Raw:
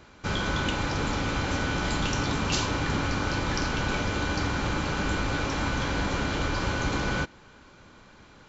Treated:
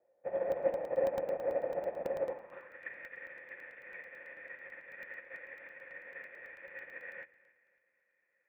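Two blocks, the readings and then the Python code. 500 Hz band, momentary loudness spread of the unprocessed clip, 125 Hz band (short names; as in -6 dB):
-1.5 dB, 1 LU, -32.5 dB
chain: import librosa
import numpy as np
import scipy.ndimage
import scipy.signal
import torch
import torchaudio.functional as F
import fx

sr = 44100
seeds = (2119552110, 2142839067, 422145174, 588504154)

y = fx.halfwave_hold(x, sr)
y = fx.formant_cascade(y, sr, vowel='e')
y = fx.echo_feedback(y, sr, ms=268, feedback_pct=42, wet_db=-13.0)
y = fx.room_shoebox(y, sr, seeds[0], volume_m3=3100.0, walls='furnished', distance_m=0.85)
y = fx.filter_sweep_bandpass(y, sr, from_hz=700.0, to_hz=1900.0, start_s=2.25, end_s=2.83, q=3.0)
y = fx.air_absorb(y, sr, metres=76.0)
y = fx.buffer_crackle(y, sr, first_s=0.52, period_s=0.11, block=64, kind='zero')
y = fx.upward_expand(y, sr, threshold_db=-53.0, expansion=2.5)
y = y * 10.0 ** (14.5 / 20.0)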